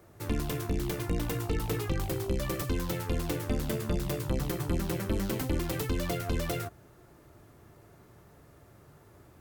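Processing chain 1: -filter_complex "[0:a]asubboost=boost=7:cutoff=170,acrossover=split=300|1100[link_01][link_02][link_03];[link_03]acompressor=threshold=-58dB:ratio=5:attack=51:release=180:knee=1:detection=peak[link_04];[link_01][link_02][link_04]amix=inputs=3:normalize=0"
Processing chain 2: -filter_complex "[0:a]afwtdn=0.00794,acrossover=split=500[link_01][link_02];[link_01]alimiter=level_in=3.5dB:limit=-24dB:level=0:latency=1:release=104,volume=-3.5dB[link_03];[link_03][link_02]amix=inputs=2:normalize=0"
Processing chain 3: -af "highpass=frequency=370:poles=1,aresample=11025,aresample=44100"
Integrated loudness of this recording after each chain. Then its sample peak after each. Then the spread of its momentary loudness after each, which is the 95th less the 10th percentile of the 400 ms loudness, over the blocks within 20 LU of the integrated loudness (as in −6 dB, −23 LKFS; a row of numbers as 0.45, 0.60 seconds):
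−24.0, −35.5, −37.5 LKFS; −7.5, −22.5, −22.0 dBFS; 8, 1, 2 LU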